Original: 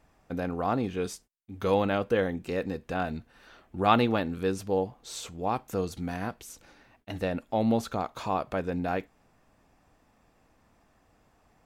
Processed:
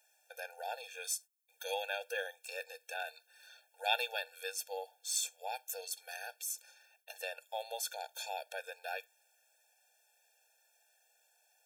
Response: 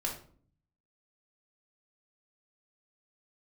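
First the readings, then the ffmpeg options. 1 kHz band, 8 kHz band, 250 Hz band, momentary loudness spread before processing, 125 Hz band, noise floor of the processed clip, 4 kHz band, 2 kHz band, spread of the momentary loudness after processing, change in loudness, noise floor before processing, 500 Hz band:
-12.0 dB, +6.5 dB, under -40 dB, 13 LU, under -40 dB, -74 dBFS, +0.5 dB, -3.0 dB, 11 LU, -10.0 dB, -66 dBFS, -14.5 dB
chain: -af "aderivative,afftfilt=real='re*eq(mod(floor(b*sr/1024/460),2),1)':imag='im*eq(mod(floor(b*sr/1024/460),2),1)':win_size=1024:overlap=0.75,volume=9dB"

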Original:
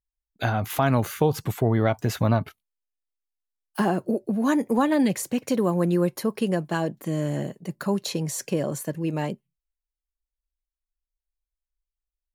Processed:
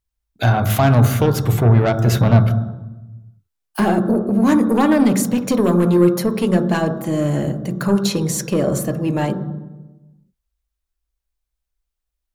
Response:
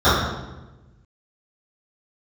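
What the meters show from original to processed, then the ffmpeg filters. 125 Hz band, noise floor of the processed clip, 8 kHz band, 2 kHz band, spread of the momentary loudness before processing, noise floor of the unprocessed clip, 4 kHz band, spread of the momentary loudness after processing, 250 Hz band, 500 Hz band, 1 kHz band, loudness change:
+11.0 dB, -80 dBFS, +7.5 dB, +6.0 dB, 8 LU, under -85 dBFS, +7.0 dB, 9 LU, +8.5 dB, +7.0 dB, +6.0 dB, +8.5 dB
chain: -filter_complex "[0:a]aeval=exprs='0.316*(cos(1*acos(clip(val(0)/0.316,-1,1)))-cos(1*PI/2))+0.0501*(cos(5*acos(clip(val(0)/0.316,-1,1)))-cos(5*PI/2))':c=same,asplit=2[a][b];[1:a]atrim=start_sample=2205,lowshelf=f=430:g=6[c];[b][c]afir=irnorm=-1:irlink=0,volume=-34dB[d];[a][d]amix=inputs=2:normalize=0,volume=2.5dB"

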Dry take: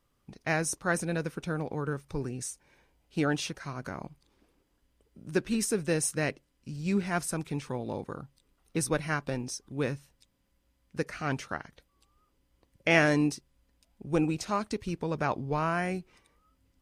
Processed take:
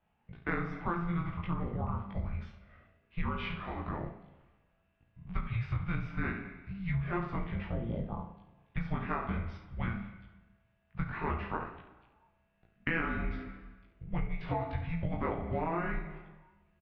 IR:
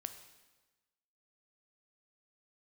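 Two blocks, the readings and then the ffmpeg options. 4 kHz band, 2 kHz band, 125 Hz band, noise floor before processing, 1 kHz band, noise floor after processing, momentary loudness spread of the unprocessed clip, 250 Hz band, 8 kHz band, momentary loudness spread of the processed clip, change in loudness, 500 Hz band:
-12.0 dB, -6.5 dB, -0.5 dB, -73 dBFS, -3.0 dB, -74 dBFS, 12 LU, -6.0 dB, under -40 dB, 14 LU, -5.5 dB, -9.0 dB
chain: -filter_complex "[0:a]aecho=1:1:35|70:0.335|0.316,asplit=2[a][b];[1:a]atrim=start_sample=2205,lowpass=4.9k,adelay=19[c];[b][c]afir=irnorm=-1:irlink=0,volume=4.5dB[d];[a][d]amix=inputs=2:normalize=0,highpass=f=170:t=q:w=0.5412,highpass=f=170:t=q:w=1.307,lowpass=f=3.3k:t=q:w=0.5176,lowpass=f=3.3k:t=q:w=0.7071,lowpass=f=3.3k:t=q:w=1.932,afreqshift=-340,acompressor=threshold=-27dB:ratio=8,volume=-2dB"

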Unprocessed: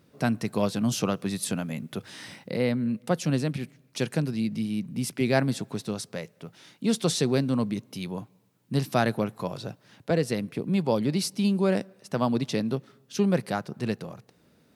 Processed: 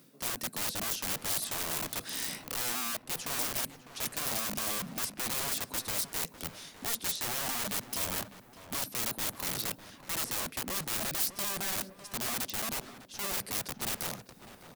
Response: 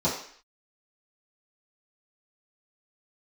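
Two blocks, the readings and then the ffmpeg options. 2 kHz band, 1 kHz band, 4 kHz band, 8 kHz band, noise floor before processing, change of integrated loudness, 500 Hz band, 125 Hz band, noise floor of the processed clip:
-2.0 dB, -5.0 dB, +1.0 dB, +5.0 dB, -63 dBFS, -4.5 dB, -15.0 dB, -17.5 dB, -56 dBFS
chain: -filter_complex "[0:a]acrossover=split=4100[a][b];[b]acompressor=threshold=-43dB:ratio=4:attack=1:release=60[c];[a][c]amix=inputs=2:normalize=0,highpass=f=130:w=0.5412,highpass=f=130:w=1.3066,equalizer=f=260:t=o:w=0.33:g=6,areverse,acompressor=threshold=-31dB:ratio=12,areverse,aeval=exprs='(mod(53.1*val(0)+1,2)-1)/53.1':c=same,crystalizer=i=2.5:c=0,asplit=2[d][e];[e]adelay=602,lowpass=f=2k:p=1,volume=-12dB,asplit=2[f][g];[g]adelay=602,lowpass=f=2k:p=1,volume=0.47,asplit=2[h][i];[i]adelay=602,lowpass=f=2k:p=1,volume=0.47,asplit=2[j][k];[k]adelay=602,lowpass=f=2k:p=1,volume=0.47,asplit=2[l][m];[m]adelay=602,lowpass=f=2k:p=1,volume=0.47[n];[d][f][h][j][l][n]amix=inputs=6:normalize=0"

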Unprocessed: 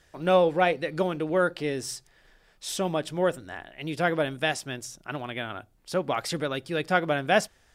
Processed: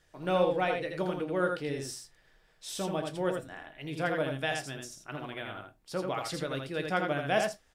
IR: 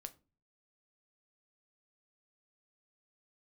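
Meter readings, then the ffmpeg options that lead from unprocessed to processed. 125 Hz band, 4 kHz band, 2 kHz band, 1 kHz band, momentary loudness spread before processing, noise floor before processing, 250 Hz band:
-4.0 dB, -5.5 dB, -5.5 dB, -5.5 dB, 13 LU, -62 dBFS, -4.5 dB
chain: -filter_complex "[0:a]aecho=1:1:82:0.596[a];[1:a]atrim=start_sample=2205,afade=t=out:st=0.14:d=0.01,atrim=end_sample=6615[b];[a][b]afir=irnorm=-1:irlink=0,volume=-1.5dB"

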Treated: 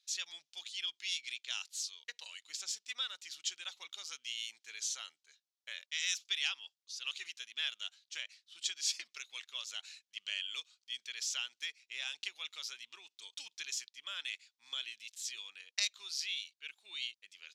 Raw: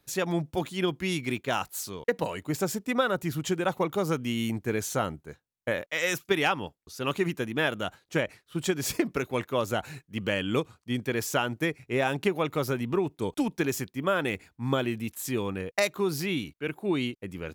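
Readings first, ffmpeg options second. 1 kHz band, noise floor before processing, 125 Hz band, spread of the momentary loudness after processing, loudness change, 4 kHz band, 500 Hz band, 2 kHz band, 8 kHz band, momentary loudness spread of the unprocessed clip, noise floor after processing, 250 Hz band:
-25.5 dB, -78 dBFS, under -40 dB, 12 LU, -10.0 dB, 0.0 dB, -40.0 dB, -11.0 dB, -2.0 dB, 6 LU, under -85 dBFS, under -40 dB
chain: -af "asuperpass=centerf=4600:order=4:qfactor=1.3,volume=2dB"

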